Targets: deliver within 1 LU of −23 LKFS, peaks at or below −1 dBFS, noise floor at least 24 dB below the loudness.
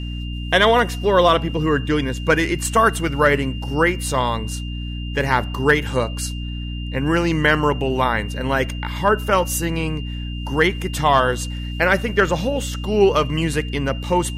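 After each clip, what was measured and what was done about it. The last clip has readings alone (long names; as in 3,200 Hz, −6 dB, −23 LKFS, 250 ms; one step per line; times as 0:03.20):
mains hum 60 Hz; hum harmonics up to 300 Hz; level of the hum −25 dBFS; interfering tone 2,800 Hz; level of the tone −36 dBFS; integrated loudness −19.5 LKFS; sample peak −3.5 dBFS; target loudness −23.0 LKFS
→ mains-hum notches 60/120/180/240/300 Hz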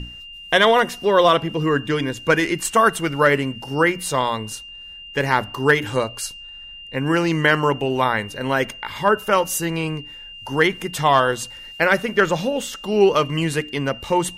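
mains hum none found; interfering tone 2,800 Hz; level of the tone −36 dBFS
→ notch filter 2,800 Hz, Q 30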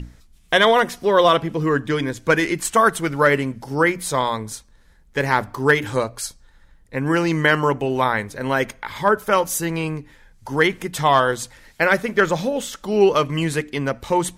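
interfering tone none found; integrated loudness −20.0 LKFS; sample peak −4.0 dBFS; target loudness −23.0 LKFS
→ level −3 dB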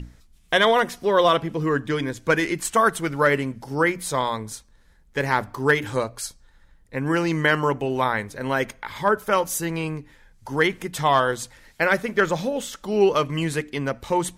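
integrated loudness −23.0 LKFS; sample peak −7.0 dBFS; background noise floor −55 dBFS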